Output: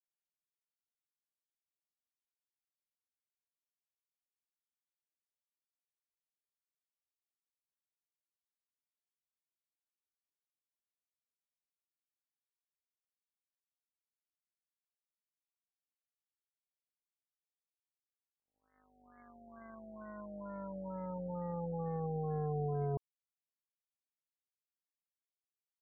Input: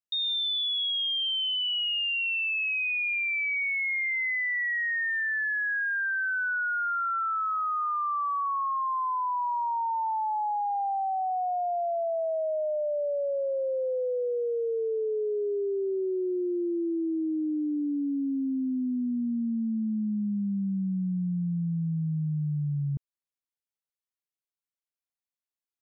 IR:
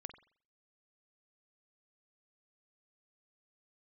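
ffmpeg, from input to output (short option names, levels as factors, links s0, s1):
-filter_complex "[0:a]equalizer=f=630:w=0.78:g=-10,acrossover=split=400[s0][s1];[s1]acompressor=threshold=0.00562:ratio=12[s2];[s0][s2]amix=inputs=2:normalize=0,aeval=exprs='val(0)+0.000631*(sin(2*PI*50*n/s)+sin(2*PI*2*50*n/s)/2+sin(2*PI*3*50*n/s)/3+sin(2*PI*4*50*n/s)/4+sin(2*PI*5*50*n/s)/5)':c=same,acrusher=bits=3:mix=0:aa=0.5,afftfilt=real='re*lt(b*sr/1024,780*pow(2200/780,0.5+0.5*sin(2*PI*2.2*pts/sr)))':imag='im*lt(b*sr/1024,780*pow(2200/780,0.5+0.5*sin(2*PI*2.2*pts/sr)))':win_size=1024:overlap=0.75,volume=5.01"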